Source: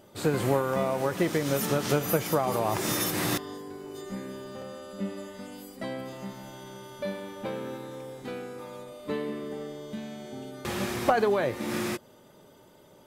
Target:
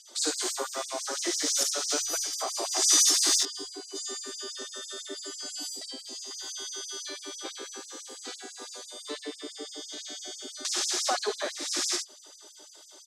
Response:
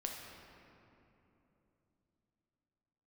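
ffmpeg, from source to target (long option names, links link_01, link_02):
-filter_complex "[0:a]asplit=2[link_01][link_02];[link_02]acompressor=threshold=-40dB:ratio=6,volume=-0.5dB[link_03];[link_01][link_03]amix=inputs=2:normalize=0,asettb=1/sr,asplit=3[link_04][link_05][link_06];[link_04]atrim=end=1.634[link_07];[link_05]atrim=start=1.63:end=2.58,asetpts=PTS-STARTPTS,afade=type=in:duration=0.004:curve=qsin,afade=type=out:start_time=0.946:duration=0.004:curve=qsin,agate=range=-33dB:threshold=-22dB:ratio=3:detection=peak[link_08];[link_06]atrim=start=2.576[link_09];[link_07][link_08]acrossfade=duration=0.004:curve1=hsin:curve2=qsin[link_10];[link_10][link_09]acrossfade=duration=0.004:curve1=qsin:curve2=hsin,highpass=110,equalizer=frequency=510:width_type=q:width=4:gain=-9,equalizer=frequency=930:width_type=q:width=4:gain=-4,equalizer=frequency=2500:width_type=q:width=4:gain=-4,lowpass=frequency=6500:width=0.5412,lowpass=frequency=6500:width=1.3066,aecho=1:1:54|74:0.562|0.473,acrossover=split=3700[link_11][link_12];[link_12]crystalizer=i=10:c=0[link_13];[link_11][link_13]amix=inputs=2:normalize=0,asettb=1/sr,asplit=3[link_14][link_15][link_16];[link_14]atrim=end=4.514[link_17];[link_15]atrim=start=4.51:end=5.15,asetpts=PTS-STARTPTS,afade=type=in:duration=0.004:curve=qsin,afade=type=out:start_time=0.636:duration=0.004:curve=qsin,aecho=1:1:4.5:0.81,atrim=end_sample=28224[link_18];[link_16]atrim=start=5.146[link_19];[link_17][link_18]acrossfade=duration=0.004:curve1=hsin:curve2=qsin[link_20];[link_20][link_19]acrossfade=duration=0.004:curve1=qsin:curve2=hsin,asettb=1/sr,asplit=3[link_21][link_22][link_23];[link_21]atrim=end=5.674[link_24];[link_22]atrim=start=5.67:end=6.31,asetpts=PTS-STARTPTS,afade=type=in:duration=0.004:curve=qsin,afade=type=out:start_time=0.636:duration=0.004:curve=qsin,equalizer=frequency=1400:width=0.95:gain=-13[link_25];[link_23]atrim=start=6.306[link_26];[link_24][link_25]acrossfade=duration=0.004:curve1=hsin:curve2=qsin[link_27];[link_27][link_26]acrossfade=duration=0.004:curve1=qsin:curve2=hsin,afftfilt=real='re*gte(b*sr/1024,240*pow(5000/240,0.5+0.5*sin(2*PI*6*pts/sr)))':imag='im*gte(b*sr/1024,240*pow(5000/240,0.5+0.5*sin(2*PI*6*pts/sr)))':win_size=1024:overlap=0.75,volume=-3.5dB"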